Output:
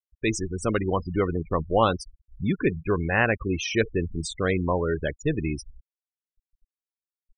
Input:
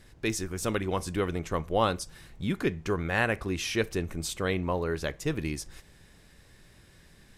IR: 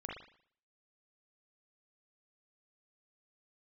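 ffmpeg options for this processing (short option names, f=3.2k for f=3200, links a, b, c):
-af "acontrast=22,afftfilt=real='re*gte(hypot(re,im),0.0631)':imag='im*gte(hypot(re,im),0.0631)':win_size=1024:overlap=0.75"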